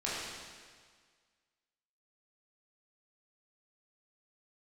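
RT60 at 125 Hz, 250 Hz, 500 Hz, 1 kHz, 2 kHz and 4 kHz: 1.7 s, 1.7 s, 1.7 s, 1.7 s, 1.7 s, 1.7 s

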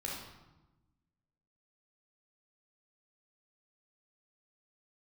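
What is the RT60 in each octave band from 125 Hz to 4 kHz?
1.6 s, 1.6 s, 1.0 s, 1.1 s, 0.85 s, 0.75 s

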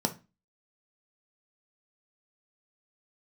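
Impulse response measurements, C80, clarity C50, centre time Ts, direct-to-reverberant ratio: 23.5 dB, 15.5 dB, 7 ms, 5.0 dB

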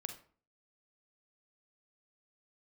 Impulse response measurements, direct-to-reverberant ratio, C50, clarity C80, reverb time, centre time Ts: 6.0 dB, 9.5 dB, 14.5 dB, 0.45 s, 13 ms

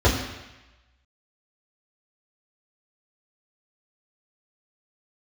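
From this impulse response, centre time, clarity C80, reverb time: 41 ms, 7.0 dB, 1.0 s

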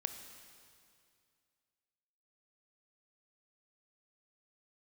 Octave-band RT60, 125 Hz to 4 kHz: 2.5 s, 2.4 s, 2.3 s, 2.3 s, 2.2 s, 2.2 s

